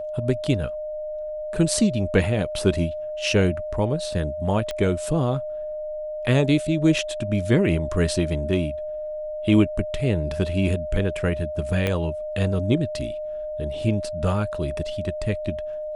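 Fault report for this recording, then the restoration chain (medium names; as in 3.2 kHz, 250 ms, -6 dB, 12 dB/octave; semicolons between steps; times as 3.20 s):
whine 610 Hz -28 dBFS
4.71 s: pop -15 dBFS
11.87 s: pop -11 dBFS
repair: de-click; band-stop 610 Hz, Q 30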